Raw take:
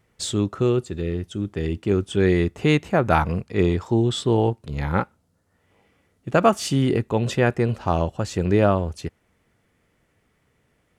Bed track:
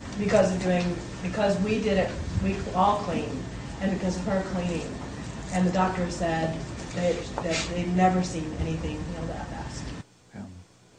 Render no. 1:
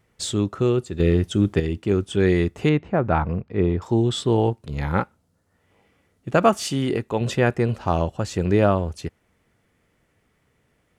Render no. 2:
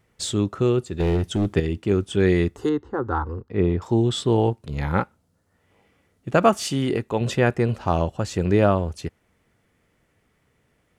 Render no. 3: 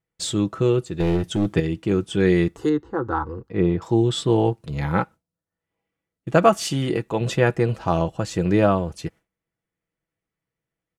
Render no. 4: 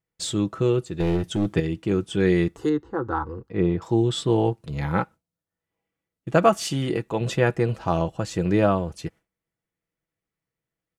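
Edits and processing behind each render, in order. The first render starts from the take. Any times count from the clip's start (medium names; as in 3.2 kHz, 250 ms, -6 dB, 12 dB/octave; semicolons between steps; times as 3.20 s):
1.00–1.60 s: gain +8 dB; 2.69–3.82 s: tape spacing loss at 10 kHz 32 dB; 6.63–7.21 s: bass shelf 220 Hz -7 dB
0.87–1.53 s: hard clipper -17 dBFS; 2.56–3.50 s: static phaser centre 640 Hz, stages 6
comb 6.1 ms, depth 44%; gate with hold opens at -42 dBFS
trim -2 dB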